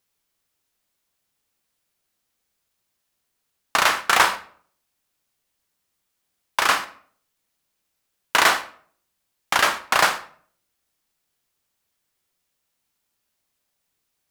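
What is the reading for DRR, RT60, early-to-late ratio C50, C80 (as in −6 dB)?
9.0 dB, 0.55 s, 14.0 dB, 18.0 dB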